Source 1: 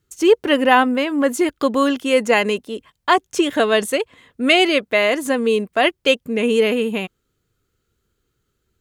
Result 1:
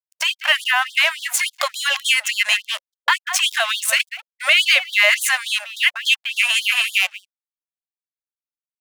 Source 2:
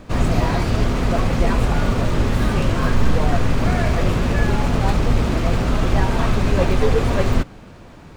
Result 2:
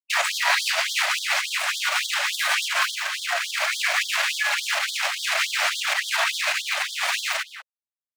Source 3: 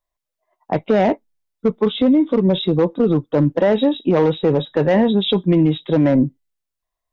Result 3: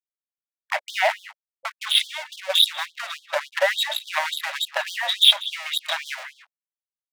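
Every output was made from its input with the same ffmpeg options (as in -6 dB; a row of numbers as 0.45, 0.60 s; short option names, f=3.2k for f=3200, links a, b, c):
-filter_complex "[0:a]aeval=exprs='sgn(val(0))*max(abs(val(0))-0.0211,0)':c=same,acrossover=split=240[a][b];[b]acompressor=threshold=-20dB:ratio=4[c];[a][c]amix=inputs=2:normalize=0,asplit=2[d][e];[e]adelay=190,highpass=300,lowpass=3.4k,asoftclip=type=hard:threshold=-13dB,volume=-14dB[f];[d][f]amix=inputs=2:normalize=0,acompressor=threshold=-17dB:ratio=6,agate=range=-33dB:threshold=-34dB:ratio=3:detection=peak,equalizer=f=125:t=o:w=1:g=-4,equalizer=f=500:t=o:w=1:g=-6,equalizer=f=1k:t=o:w=1:g=-4,equalizer=f=2k:t=o:w=1:g=4,aeval=exprs='sgn(val(0))*max(abs(val(0))-0.0015,0)':c=same,adynamicequalizer=threshold=0.01:dfrequency=830:dqfactor=0.79:tfrequency=830:tqfactor=0.79:attack=5:release=100:ratio=0.375:range=2.5:mode=cutabove:tftype=bell,alimiter=level_in=16.5dB:limit=-1dB:release=50:level=0:latency=1,afftfilt=real='re*gte(b*sr/1024,530*pow(3200/530,0.5+0.5*sin(2*PI*3.5*pts/sr)))':imag='im*gte(b*sr/1024,530*pow(3200/530,0.5+0.5*sin(2*PI*3.5*pts/sr)))':win_size=1024:overlap=0.75,volume=-1dB"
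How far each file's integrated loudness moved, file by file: +0.5, -2.5, -4.5 LU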